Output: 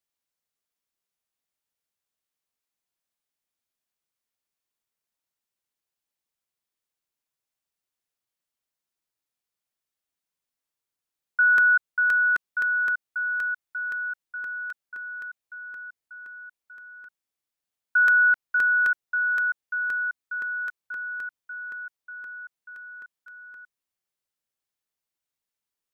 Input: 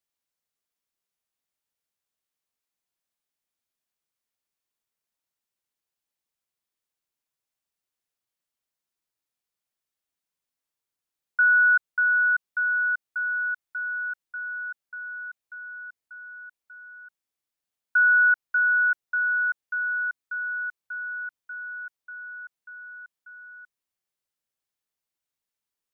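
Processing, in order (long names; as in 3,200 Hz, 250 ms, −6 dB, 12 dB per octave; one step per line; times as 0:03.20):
regular buffer underruns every 0.26 s, samples 64, repeat, from 0:00.66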